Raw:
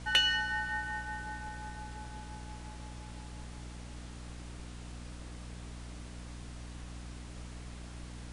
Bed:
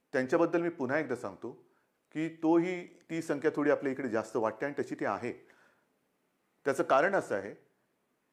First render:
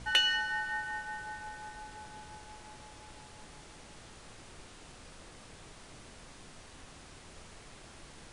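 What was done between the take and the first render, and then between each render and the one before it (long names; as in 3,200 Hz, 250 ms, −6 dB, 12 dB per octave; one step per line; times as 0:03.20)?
hum removal 60 Hz, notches 5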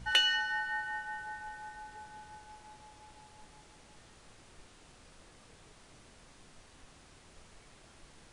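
noise reduction from a noise print 6 dB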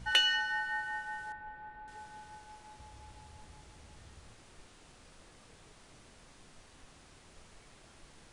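0:01.32–0:01.88: high-frequency loss of the air 490 metres
0:02.79–0:04.34: parametric band 73 Hz +13.5 dB 1.2 octaves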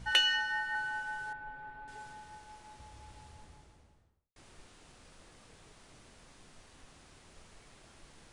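0:00.74–0:02.13: comb filter 7.4 ms, depth 75%
0:03.22–0:04.36: fade out and dull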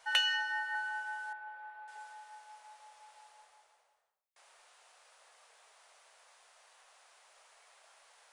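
inverse Chebyshev high-pass filter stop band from 300 Hz, stop band 40 dB
parametric band 4,300 Hz −3.5 dB 2.4 octaves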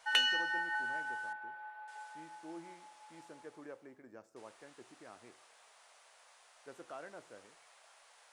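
mix in bed −22 dB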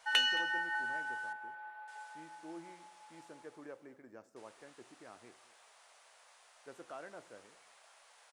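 single-tap delay 220 ms −19.5 dB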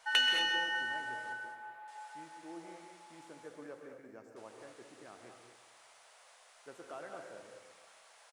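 repeating echo 130 ms, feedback 55%, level −13 dB
reverb whose tail is shaped and stops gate 250 ms rising, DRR 3.5 dB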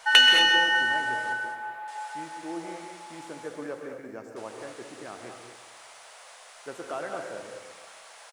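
level +12 dB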